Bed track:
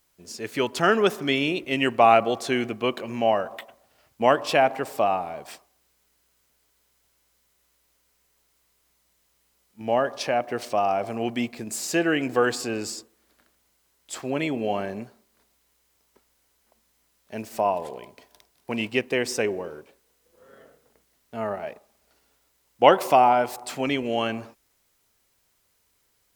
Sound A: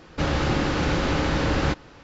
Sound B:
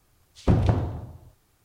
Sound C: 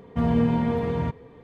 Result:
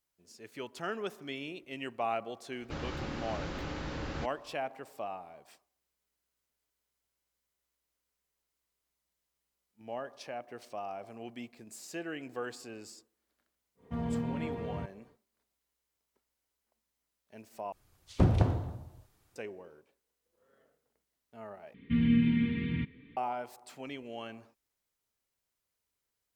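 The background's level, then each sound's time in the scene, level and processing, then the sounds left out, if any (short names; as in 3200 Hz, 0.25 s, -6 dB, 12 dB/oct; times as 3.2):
bed track -17 dB
2.52 add A -15.5 dB
13.75 add C -12.5 dB, fades 0.10 s
17.72 replace with B -4.5 dB
21.74 replace with C -9 dB + EQ curve 110 Hz 0 dB, 280 Hz +8 dB, 720 Hz -28 dB, 1400 Hz -4 dB, 2200 Hz +14 dB, 3700 Hz +8 dB, 6700 Hz -22 dB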